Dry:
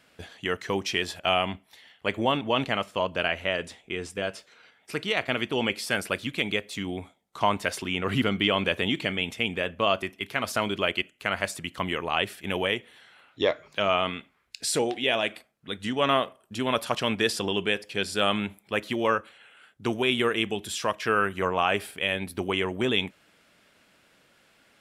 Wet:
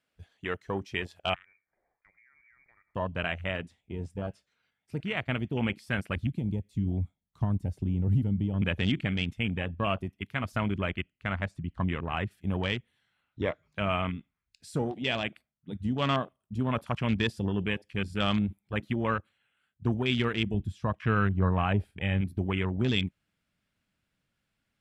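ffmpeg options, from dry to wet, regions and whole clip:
ffmpeg -i in.wav -filter_complex "[0:a]asettb=1/sr,asplit=3[link_01][link_02][link_03];[link_01]atrim=end=1.344[link_04];[link_02]atrim=start=1.34:end=2.95,asetpts=PTS-STARTPTS,afade=type=in:duration=0.004:curve=qsin,afade=type=out:start_time=1.606:duration=0.004:curve=qsin,lowpass=frequency=2100:width_type=q:width=0.5098,lowpass=frequency=2100:width_type=q:width=0.6013,lowpass=frequency=2100:width_type=q:width=0.9,lowpass=frequency=2100:width_type=q:width=2.563,afreqshift=-2500,acompressor=threshold=-38dB:ratio=16:attack=3.2:release=140:knee=1:detection=peak[link_05];[link_03]atrim=start=2.946[link_06];[link_04][link_05]acrossfade=duration=0.004:curve1=hsin:curve2=qsin[link_07];[link_07][link_06]acrossfade=duration=0.004:curve1=qsin:curve2=hsin,asettb=1/sr,asplit=3[link_08][link_09][link_10];[link_08]atrim=end=6.164[link_11];[link_09]atrim=start=6.16:end=8.62,asetpts=PTS-STARTPTS,afade=type=in:duration=0.004:curve=qsin,afade=type=out:start_time=2.456:duration=0.004:curve=qsin,lowshelf=frequency=150:gain=9,acrossover=split=490|5600[link_12][link_13][link_14];[link_12]acompressor=threshold=-29dB:ratio=4[link_15];[link_13]acompressor=threshold=-39dB:ratio=4[link_16];[link_14]acompressor=threshold=-46dB:ratio=4[link_17];[link_15][link_16][link_17]amix=inputs=3:normalize=0[link_18];[link_10]atrim=start=8.616[link_19];[link_11][link_18]acrossfade=duration=0.004:curve1=hsin:curve2=qsin[link_20];[link_20][link_19]acrossfade=duration=0.004:curve1=qsin:curve2=hsin,asettb=1/sr,asplit=3[link_21][link_22][link_23];[link_21]atrim=end=10.784[link_24];[link_22]atrim=start=10.78:end=12.31,asetpts=PTS-STARTPTS,afade=type=in:duration=0.004:curve=qsin,afade=type=out:start_time=1.526:duration=0.004:curve=qsin,aemphasis=mode=reproduction:type=50fm,asoftclip=type=hard:threshold=-12.5dB[link_25];[link_23]atrim=start=12.306[link_26];[link_24][link_25]acrossfade=duration=0.004:curve1=hsin:curve2=qsin[link_27];[link_27][link_26]acrossfade=duration=0.004:curve1=qsin:curve2=hsin,asettb=1/sr,asplit=3[link_28][link_29][link_30];[link_28]atrim=end=20.544[link_31];[link_29]atrim=start=20.54:end=22.21,asetpts=PTS-STARTPTS,afade=type=in:duration=0.004:curve=qsin,afade=type=out:start_time=1.666:duration=0.004:curve=qsin,agate=range=-33dB:threshold=-43dB:ratio=3:release=100:detection=peak,lowpass=frequency=3600:poles=1,lowshelf=frequency=190:gain=7.5[link_32];[link_30]atrim=start=22.206[link_33];[link_31][link_32]acrossfade=duration=0.004:curve1=hsin:curve2=qsin[link_34];[link_34][link_33]acrossfade=duration=0.004:curve1=qsin:curve2=hsin,afwtdn=0.0282,asubboost=boost=6:cutoff=170,volume=-4dB" out.wav

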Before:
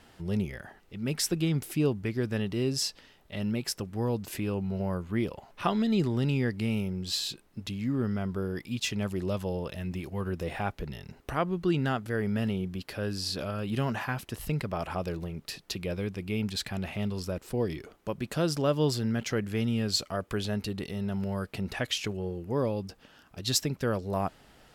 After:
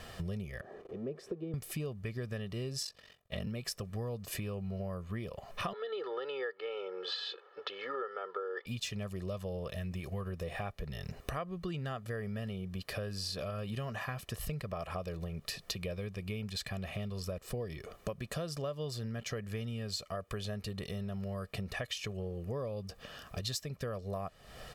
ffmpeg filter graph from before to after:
ffmpeg -i in.wav -filter_complex "[0:a]asettb=1/sr,asplit=3[link_01][link_02][link_03];[link_01]atrim=end=0.614[link_04];[link_02]atrim=start=0.61:end=1.54,asetpts=PTS-STARTPTS,afade=type=in:duration=0.004:curve=qsin,afade=type=out:start_time=0.926:duration=0.004:curve=qsin,aeval=exprs='val(0)+0.5*0.0106*sgn(val(0))':channel_layout=same,bandpass=frequency=380:width_type=q:width=3.2[link_05];[link_03]atrim=start=1.536[link_06];[link_04][link_05]acrossfade=duration=0.004:curve1=hsin:curve2=qsin[link_07];[link_07][link_06]acrossfade=duration=0.004:curve1=qsin:curve2=hsin,asettb=1/sr,asplit=3[link_08][link_09][link_10];[link_08]atrim=end=2.834[link_11];[link_09]atrim=start=2.83:end=3.47,asetpts=PTS-STARTPTS,afade=type=in:duration=0.004:curve=qsin,afade=type=out:start_time=0.636:duration=0.004:curve=qsin,highpass=58,aeval=exprs='val(0)*sin(2*PI*23*n/s)':channel_layout=same,agate=range=-33dB:threshold=-56dB:ratio=3:release=100:detection=peak[link_12];[link_10]atrim=start=3.466[link_13];[link_11][link_12]acrossfade=duration=0.004:curve1=hsin:curve2=qsin[link_14];[link_14][link_13]acrossfade=duration=0.004:curve1=qsin:curve2=hsin,asettb=1/sr,asplit=3[link_15][link_16][link_17];[link_15]atrim=end=5.734[link_18];[link_16]atrim=start=5.73:end=8.66,asetpts=PTS-STARTPTS,afade=type=in:duration=0.004:curve=qsin,afade=type=out:start_time=2.926:duration=0.004:curve=qsin,highpass=frequency=440:width=0.5412,highpass=frequency=440:width=1.3066,equalizer=frequency=460:width_type=q:width=4:gain=4,equalizer=frequency=970:width_type=q:width=4:gain=3,equalizer=frequency=1400:width_type=q:width=4:gain=9,equalizer=frequency=2400:width_type=q:width=4:gain=-9,lowpass=frequency=3400:width=0.5412,lowpass=frequency=3400:width=1.3066,aecho=1:1:2.3:0.81,atrim=end_sample=129213[link_19];[link_17]atrim=start=8.656[link_20];[link_18][link_19]acrossfade=duration=0.004:curve1=hsin:curve2=qsin[link_21];[link_21][link_20]acrossfade=duration=0.004:curve1=qsin:curve2=hsin,aecho=1:1:1.7:0.61,acompressor=threshold=-43dB:ratio=8,volume=7dB" out.wav

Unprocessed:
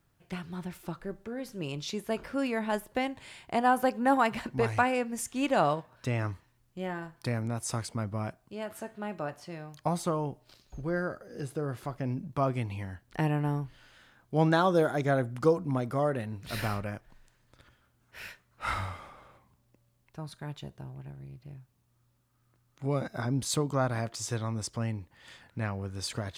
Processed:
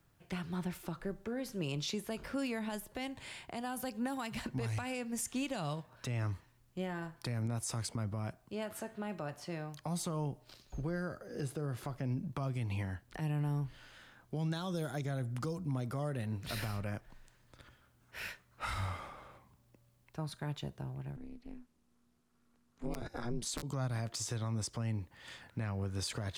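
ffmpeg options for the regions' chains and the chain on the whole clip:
ffmpeg -i in.wav -filter_complex "[0:a]asettb=1/sr,asplit=3[link_01][link_02][link_03];[link_01]atrim=end=21.164[link_04];[link_02]atrim=start=21.16:end=23.63,asetpts=PTS-STARTPTS,afade=type=in:duration=0.004:curve=qsin,afade=type=out:start_time=2.466:duration=0.004:curve=qsin,lowpass=11000,aeval=exprs='(mod(8.91*val(0)+1,2)-1)/8.91':channel_layout=same,aeval=exprs='val(0)*sin(2*PI*120*n/s)':channel_layout=same[link_05];[link_03]atrim=start=23.626[link_06];[link_04][link_05]acrossfade=duration=0.004:curve1=hsin:curve2=qsin[link_07];[link_07][link_06]acrossfade=duration=0.004:curve1=qsin:curve2=hsin,acrossover=split=180|3000[link_08][link_09][link_10];[link_09]acompressor=threshold=-37dB:ratio=6[link_11];[link_08][link_11][link_10]amix=inputs=3:normalize=0,alimiter=level_in=5dB:limit=-24dB:level=0:latency=1:release=96,volume=-5dB,volume=1dB" out.wav

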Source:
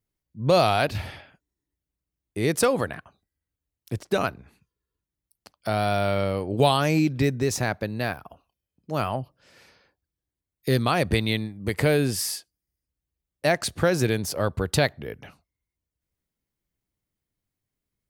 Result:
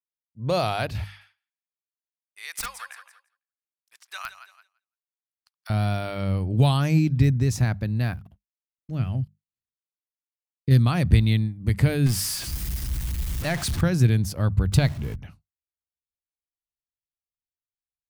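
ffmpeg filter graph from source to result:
ffmpeg -i in.wav -filter_complex "[0:a]asettb=1/sr,asplit=3[link_01][link_02][link_03];[link_01]atrim=end=1.044[link_04];[link_02]atrim=start=1.04:end=5.7,asetpts=PTS-STARTPTS,afade=type=in:duration=0.004:curve=qsin,afade=type=out:start_time=4.656:duration=0.004:curve=qsin,highpass=frequency=1100:width=0.5412,highpass=frequency=1100:width=1.3066,aecho=1:1:168|336|504|672:0.251|0.105|0.0443|0.0186,atrim=end_sample=205506,aeval=exprs='(mod(7.08*val(0)+1,2)-1)/7.08':channel_layout=same[link_05];[link_03]atrim=start=5.696[link_06];[link_04][link_05]acrossfade=duration=0.004:curve1=hsin:curve2=qsin[link_07];[link_07][link_06]acrossfade=duration=0.004:curve1=qsin:curve2=hsin,asettb=1/sr,asplit=3[link_08][link_09][link_10];[link_08]atrim=end=8.144[link_11];[link_09]atrim=start=8.14:end=10.71,asetpts=PTS-STARTPTS,afade=type=in:duration=0.004:curve=qsin,afade=type=out:start_time=2.566:duration=0.004:curve=qsin,acrossover=split=3600[link_12][link_13];[link_13]acompressor=threshold=-60dB:ratio=4:attack=1:release=60[link_14];[link_12][link_14]amix=inputs=2:normalize=0,equalizer=frequency=980:width=1:gain=-13,aeval=exprs='sgn(val(0))*max(abs(val(0))-0.00141,0)':channel_layout=same[link_15];[link_10]atrim=start=10.706[link_16];[link_11][link_15]acrossfade=duration=0.004:curve1=hsin:curve2=qsin[link_17];[link_17][link_16]acrossfade=duration=0.004:curve1=qsin:curve2=hsin,asettb=1/sr,asplit=3[link_18][link_19][link_20];[link_18]atrim=end=12.064[link_21];[link_19]atrim=start=12.06:end=13.81,asetpts=PTS-STARTPTS,afade=type=in:duration=0.004:curve=qsin,afade=type=out:start_time=1.746:duration=0.004:curve=qsin,aeval=exprs='val(0)+0.5*0.0708*sgn(val(0))':channel_layout=same,lowshelf=frequency=450:gain=-7[link_22];[link_20]atrim=start=13.806[link_23];[link_21][link_22]acrossfade=duration=0.004:curve1=hsin:curve2=qsin[link_24];[link_24][link_23]acrossfade=duration=0.004:curve1=qsin:curve2=hsin,asettb=1/sr,asplit=3[link_25][link_26][link_27];[link_25]atrim=end=14.724[link_28];[link_26]atrim=start=14.72:end=15.16,asetpts=PTS-STARTPTS,afade=type=in:duration=0.004:curve=qsin,afade=type=out:start_time=0.436:duration=0.004:curve=qsin,aeval=exprs='val(0)+0.5*0.0188*sgn(val(0))':channel_layout=same,bandreject=frequency=1800:width=13[link_29];[link_27]atrim=start=15.156[link_30];[link_28][link_29]acrossfade=duration=0.004:curve1=hsin:curve2=qsin[link_31];[link_31][link_30]acrossfade=duration=0.004:curve1=qsin:curve2=hsin,bandreject=frequency=50:width_type=h:width=6,bandreject=frequency=100:width_type=h:width=6,bandreject=frequency=150:width_type=h:width=6,bandreject=frequency=200:width_type=h:width=6,agate=range=-33dB:threshold=-45dB:ratio=3:detection=peak,asubboost=boost=8:cutoff=160,volume=-4.5dB" out.wav

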